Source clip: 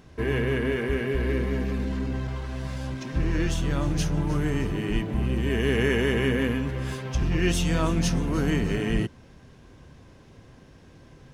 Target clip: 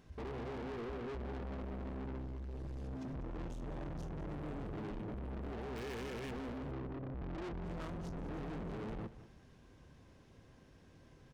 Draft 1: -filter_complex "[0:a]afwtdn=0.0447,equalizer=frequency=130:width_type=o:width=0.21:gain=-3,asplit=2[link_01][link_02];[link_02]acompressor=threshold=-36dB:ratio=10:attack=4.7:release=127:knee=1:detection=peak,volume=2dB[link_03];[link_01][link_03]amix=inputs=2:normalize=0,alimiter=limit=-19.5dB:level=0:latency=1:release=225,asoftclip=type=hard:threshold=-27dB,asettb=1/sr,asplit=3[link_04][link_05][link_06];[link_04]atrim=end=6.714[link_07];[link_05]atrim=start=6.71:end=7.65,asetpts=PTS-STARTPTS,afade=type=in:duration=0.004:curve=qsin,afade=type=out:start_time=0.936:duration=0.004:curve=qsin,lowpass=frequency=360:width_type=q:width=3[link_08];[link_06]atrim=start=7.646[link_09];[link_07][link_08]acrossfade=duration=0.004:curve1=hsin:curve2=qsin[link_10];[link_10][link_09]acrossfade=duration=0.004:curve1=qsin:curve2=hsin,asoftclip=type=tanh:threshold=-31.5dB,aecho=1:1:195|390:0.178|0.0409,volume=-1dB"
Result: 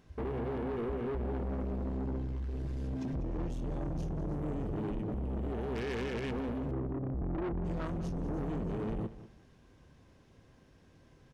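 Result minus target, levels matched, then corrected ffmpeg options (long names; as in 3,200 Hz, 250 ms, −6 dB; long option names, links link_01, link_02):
downward compressor: peak gain reduction −8.5 dB; soft clipping: distortion −6 dB
-filter_complex "[0:a]afwtdn=0.0447,equalizer=frequency=130:width_type=o:width=0.21:gain=-3,asplit=2[link_01][link_02];[link_02]acompressor=threshold=-45.5dB:ratio=10:attack=4.7:release=127:knee=1:detection=peak,volume=2dB[link_03];[link_01][link_03]amix=inputs=2:normalize=0,alimiter=limit=-19.5dB:level=0:latency=1:release=225,asoftclip=type=hard:threshold=-27dB,asettb=1/sr,asplit=3[link_04][link_05][link_06];[link_04]atrim=end=6.714[link_07];[link_05]atrim=start=6.71:end=7.65,asetpts=PTS-STARTPTS,afade=type=in:duration=0.004:curve=qsin,afade=type=out:start_time=0.936:duration=0.004:curve=qsin,lowpass=frequency=360:width_type=q:width=3[link_08];[link_06]atrim=start=7.646[link_09];[link_07][link_08]acrossfade=duration=0.004:curve1=hsin:curve2=qsin[link_10];[link_10][link_09]acrossfade=duration=0.004:curve1=qsin:curve2=hsin,asoftclip=type=tanh:threshold=-40.5dB,aecho=1:1:195|390:0.178|0.0409,volume=-1dB"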